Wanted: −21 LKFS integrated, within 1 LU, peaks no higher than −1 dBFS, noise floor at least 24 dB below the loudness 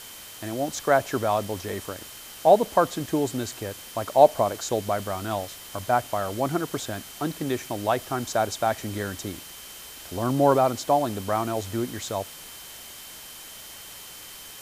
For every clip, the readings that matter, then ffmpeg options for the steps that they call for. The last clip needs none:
interfering tone 3,100 Hz; level of the tone −49 dBFS; background noise floor −43 dBFS; target noise floor −50 dBFS; integrated loudness −25.5 LKFS; sample peak −3.0 dBFS; target loudness −21.0 LKFS
→ -af "bandreject=frequency=3100:width=30"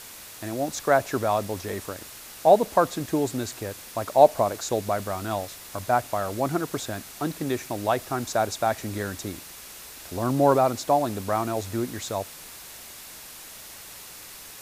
interfering tone none found; background noise floor −43 dBFS; target noise floor −50 dBFS
→ -af "afftdn=noise_reduction=7:noise_floor=-43"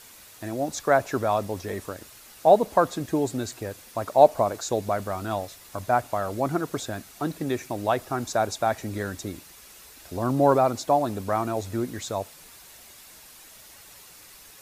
background noise floor −49 dBFS; target noise floor −50 dBFS
→ -af "afftdn=noise_reduction=6:noise_floor=-49"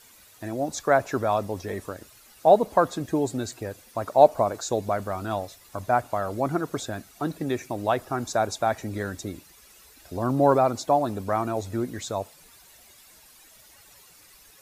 background noise floor −54 dBFS; integrated loudness −25.5 LKFS; sample peak −3.0 dBFS; target loudness −21.0 LKFS
→ -af "volume=4.5dB,alimiter=limit=-1dB:level=0:latency=1"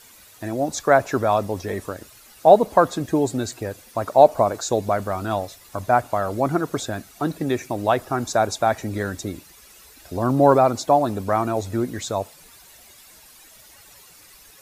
integrated loudness −21.5 LKFS; sample peak −1.0 dBFS; background noise floor −49 dBFS

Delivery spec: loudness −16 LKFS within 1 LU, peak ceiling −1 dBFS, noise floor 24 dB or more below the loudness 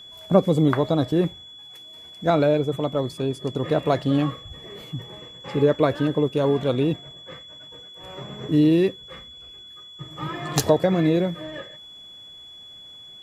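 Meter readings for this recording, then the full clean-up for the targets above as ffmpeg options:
interfering tone 3,400 Hz; level of the tone −41 dBFS; integrated loudness −22.5 LKFS; sample peak −4.0 dBFS; target loudness −16.0 LKFS
→ -af "bandreject=frequency=3400:width=30"
-af "volume=6.5dB,alimiter=limit=-1dB:level=0:latency=1"

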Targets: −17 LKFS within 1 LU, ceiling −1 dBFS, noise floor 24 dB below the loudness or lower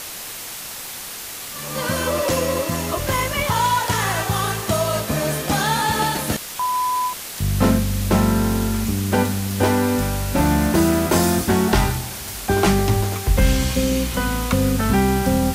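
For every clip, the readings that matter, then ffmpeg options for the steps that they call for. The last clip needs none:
background noise floor −33 dBFS; target noise floor −45 dBFS; integrated loudness −20.5 LKFS; sample peak −4.5 dBFS; target loudness −17.0 LKFS
→ -af "afftdn=noise_reduction=12:noise_floor=-33"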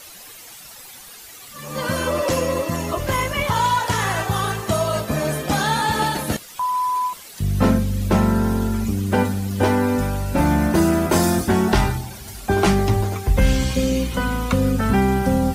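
background noise floor −41 dBFS; target noise floor −45 dBFS
→ -af "afftdn=noise_reduction=6:noise_floor=-41"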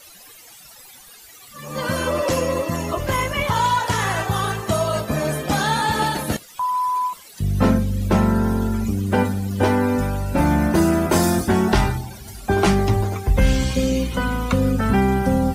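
background noise floor −45 dBFS; integrated loudness −20.5 LKFS; sample peak −5.0 dBFS; target loudness −17.0 LKFS
→ -af "volume=3.5dB"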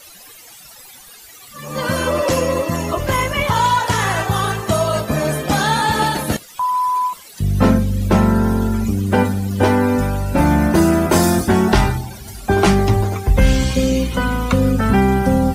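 integrated loudness −17.0 LKFS; sample peak −1.5 dBFS; background noise floor −41 dBFS

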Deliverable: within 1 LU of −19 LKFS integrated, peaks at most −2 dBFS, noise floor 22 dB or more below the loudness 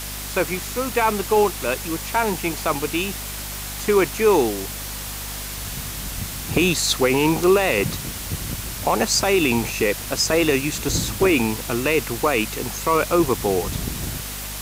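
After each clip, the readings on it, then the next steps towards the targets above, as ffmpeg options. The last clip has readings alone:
mains hum 50 Hz; hum harmonics up to 250 Hz; level of the hum −34 dBFS; background noise floor −31 dBFS; target noise floor −44 dBFS; integrated loudness −21.5 LKFS; sample peak −5.5 dBFS; target loudness −19.0 LKFS
→ -af "bandreject=frequency=50:width_type=h:width=4,bandreject=frequency=100:width_type=h:width=4,bandreject=frequency=150:width_type=h:width=4,bandreject=frequency=200:width_type=h:width=4,bandreject=frequency=250:width_type=h:width=4"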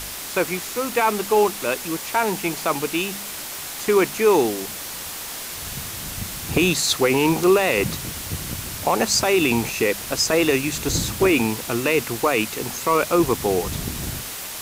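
mains hum none found; background noise floor −33 dBFS; target noise floor −44 dBFS
→ -af "afftdn=noise_reduction=11:noise_floor=-33"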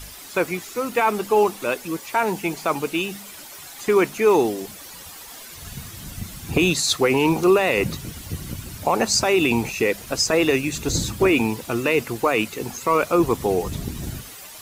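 background noise floor −40 dBFS; target noise floor −44 dBFS
→ -af "afftdn=noise_reduction=6:noise_floor=-40"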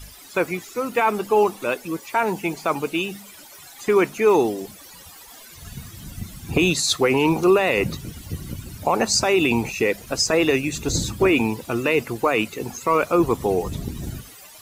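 background noise floor −44 dBFS; integrated loudness −21.0 LKFS; sample peak −6.0 dBFS; target loudness −19.0 LKFS
→ -af "volume=2dB"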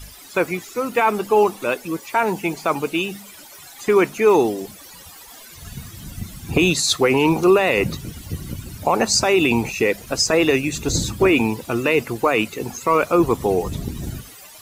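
integrated loudness −19.0 LKFS; sample peak −4.0 dBFS; background noise floor −42 dBFS

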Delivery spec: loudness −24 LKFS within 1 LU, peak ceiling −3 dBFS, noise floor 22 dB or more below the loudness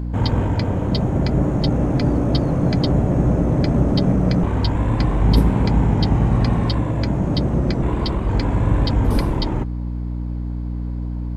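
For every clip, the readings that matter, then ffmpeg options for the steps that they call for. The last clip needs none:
mains hum 60 Hz; hum harmonics up to 300 Hz; level of the hum −22 dBFS; integrated loudness −19.5 LKFS; sample peak −3.5 dBFS; target loudness −24.0 LKFS
→ -af "bandreject=frequency=60:width_type=h:width=6,bandreject=frequency=120:width_type=h:width=6,bandreject=frequency=180:width_type=h:width=6,bandreject=frequency=240:width_type=h:width=6,bandreject=frequency=300:width_type=h:width=6"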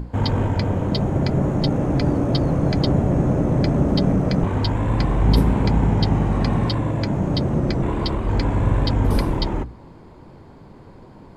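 mains hum none found; integrated loudness −20.5 LKFS; sample peak −4.5 dBFS; target loudness −24.0 LKFS
→ -af "volume=-3.5dB"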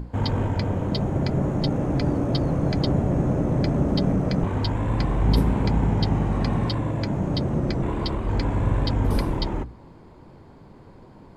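integrated loudness −24.0 LKFS; sample peak −8.0 dBFS; background noise floor −48 dBFS

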